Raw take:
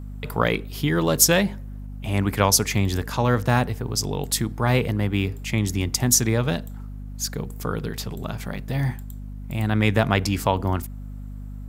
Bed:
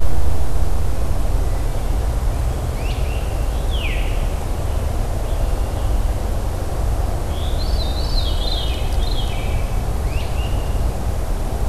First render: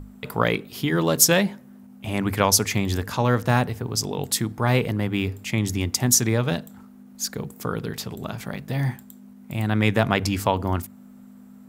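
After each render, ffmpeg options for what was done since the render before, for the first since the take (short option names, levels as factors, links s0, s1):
-af "bandreject=f=50:t=h:w=6,bandreject=f=100:t=h:w=6,bandreject=f=150:t=h:w=6"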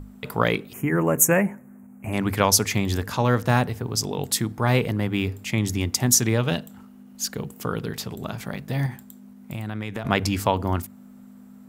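-filter_complex "[0:a]asettb=1/sr,asplit=3[s0][s1][s2];[s0]atrim=end=0.734[s3];[s1]atrim=start=0.73:end=2.13,asetpts=PTS-STARTPTS,afade=t=in:d=0.004:c=qsin,afade=t=out:st=1.396:d=0.004:c=qsin,asuperstop=centerf=4100:order=8:qfactor=0.99[s4];[s2]atrim=start=2.126[s5];[s3][s4]acrossfade=d=0.004:c1=hsin:c2=qsin[s6];[s6][s5]acrossfade=d=0.004:c1=qsin:c2=hsin,asettb=1/sr,asplit=3[s7][s8][s9];[s7]atrim=end=6.224[s10];[s8]atrim=start=6.22:end=7.82,asetpts=PTS-STARTPTS,afade=t=in:d=0.004:c=qsin,afade=t=out:st=1.596:d=0.004:c=qsin,equalizer=f=2900:w=7.7:g=8[s11];[s9]atrim=start=7.816[s12];[s10][s11]acrossfade=d=0.004:c1=hsin:c2=qsin[s13];[s13][s12]acrossfade=d=0.004:c1=qsin:c2=hsin,asettb=1/sr,asplit=3[s14][s15][s16];[s14]atrim=end=8.864[s17];[s15]atrim=start=8.86:end=10.05,asetpts=PTS-STARTPTS,afade=t=in:d=0.004:c=qsin,afade=t=out:st=1.186:d=0.004:c=qsin,acompressor=threshold=0.0501:ratio=6:attack=3.2:release=140:knee=1:detection=peak[s18];[s16]atrim=start=10.046[s19];[s17][s18]acrossfade=d=0.004:c1=hsin:c2=qsin[s20];[s20][s19]acrossfade=d=0.004:c1=qsin:c2=hsin"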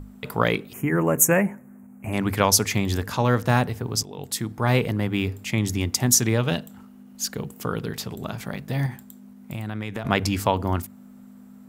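-filter_complex "[0:a]asplit=2[s0][s1];[s0]atrim=end=4.03,asetpts=PTS-STARTPTS,afade=t=out:st=4.026:d=0.004:c=hsin:silence=0.223872[s2];[s1]atrim=start=4.03,asetpts=PTS-STARTPTS,afade=t=in:d=0.67:silence=0.223872[s3];[s2][s3]concat=n=2:v=0:a=1"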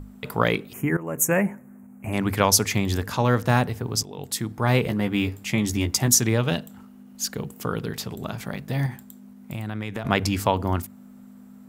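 -filter_complex "[0:a]asettb=1/sr,asplit=3[s0][s1][s2];[s0]atrim=end=4.824[s3];[s1]atrim=start=4.82:end=6.08,asetpts=PTS-STARTPTS,afade=t=in:d=0.004:c=qsin,afade=t=out:st=1.256:d=0.004:c=qsin,asplit=2[s4][s5];[s5]adelay=14,volume=0.501[s6];[s4][s6]amix=inputs=2:normalize=0,atrim=end_sample=55566[s7];[s2]atrim=start=6.076[s8];[s3][s7]acrossfade=d=0.004:c1=hsin:c2=qsin[s9];[s9][s8]acrossfade=d=0.004:c1=qsin:c2=hsin,asplit=2[s10][s11];[s10]atrim=end=0.97,asetpts=PTS-STARTPTS,afade=t=out:st=0.966:d=0.004:c=hsin:silence=0.133352[s12];[s11]atrim=start=0.97,asetpts=PTS-STARTPTS,afade=t=in:d=0.49:silence=0.133352[s13];[s12][s13]concat=n=2:v=0:a=1"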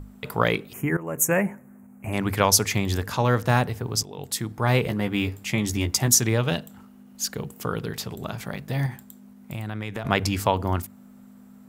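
-af "equalizer=f=240:t=o:w=0.77:g=-3"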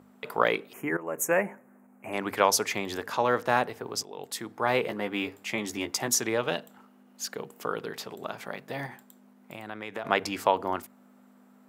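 -af "highpass=370,highshelf=f=3600:g=-9.5"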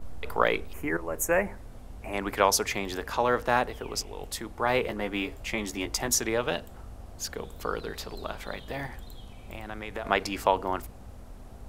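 -filter_complex "[1:a]volume=0.0596[s0];[0:a][s0]amix=inputs=2:normalize=0"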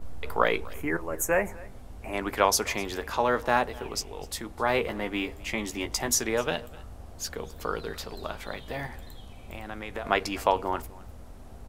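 -filter_complex "[0:a]asplit=2[s0][s1];[s1]adelay=13,volume=0.251[s2];[s0][s2]amix=inputs=2:normalize=0,aecho=1:1:254:0.0794"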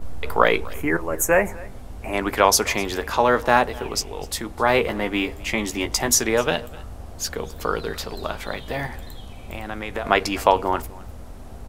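-af "volume=2.24,alimiter=limit=0.891:level=0:latency=1"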